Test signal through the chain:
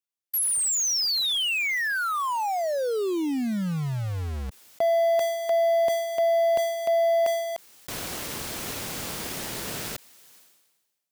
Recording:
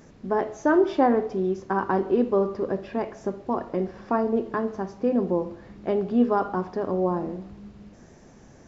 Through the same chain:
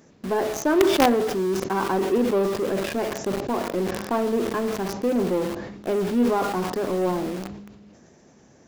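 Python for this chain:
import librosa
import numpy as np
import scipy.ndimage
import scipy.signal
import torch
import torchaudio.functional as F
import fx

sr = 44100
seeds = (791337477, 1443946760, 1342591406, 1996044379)

p1 = fx.highpass(x, sr, hz=210.0, slope=6)
p2 = fx.peak_eq(p1, sr, hz=1200.0, db=-3.5, octaves=2.4)
p3 = fx.quant_companded(p2, sr, bits=2)
p4 = p2 + (p3 * 10.0 ** (-7.0 / 20.0))
y = fx.sustainer(p4, sr, db_per_s=46.0)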